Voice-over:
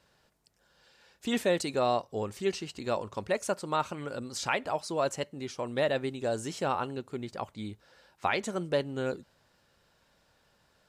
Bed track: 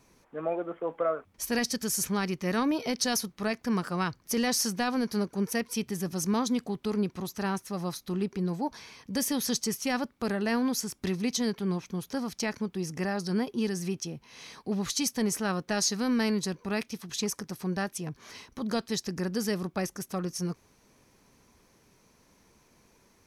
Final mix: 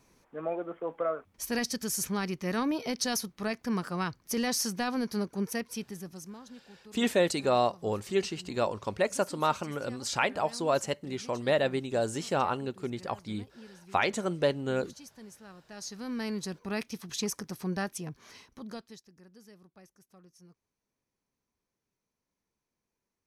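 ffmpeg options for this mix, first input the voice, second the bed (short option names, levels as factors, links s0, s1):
-filter_complex "[0:a]adelay=5700,volume=1.26[s0];[1:a]volume=7.08,afade=t=out:st=5.42:d=0.96:silence=0.11885,afade=t=in:st=15.66:d=1.28:silence=0.105925,afade=t=out:st=17.86:d=1.18:silence=0.0668344[s1];[s0][s1]amix=inputs=2:normalize=0"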